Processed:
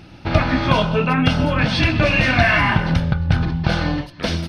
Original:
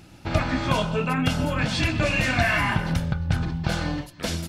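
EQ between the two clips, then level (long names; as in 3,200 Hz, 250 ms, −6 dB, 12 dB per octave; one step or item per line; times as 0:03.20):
Savitzky-Golay smoothing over 15 samples
+6.5 dB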